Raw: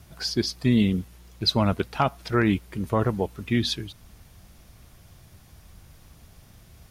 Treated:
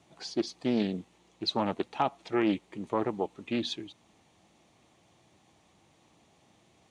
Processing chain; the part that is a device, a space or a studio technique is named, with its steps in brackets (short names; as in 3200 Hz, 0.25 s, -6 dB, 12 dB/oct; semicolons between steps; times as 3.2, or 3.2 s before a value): full-range speaker at full volume (Doppler distortion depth 0.38 ms; speaker cabinet 230–7800 Hz, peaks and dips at 320 Hz +5 dB, 830 Hz +5 dB, 1500 Hz -9 dB, 5100 Hz -9 dB); gain -5.5 dB